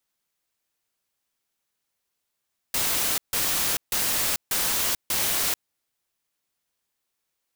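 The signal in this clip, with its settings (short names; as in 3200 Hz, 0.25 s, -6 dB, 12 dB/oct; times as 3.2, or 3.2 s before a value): noise bursts white, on 0.44 s, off 0.15 s, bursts 5, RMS -24.5 dBFS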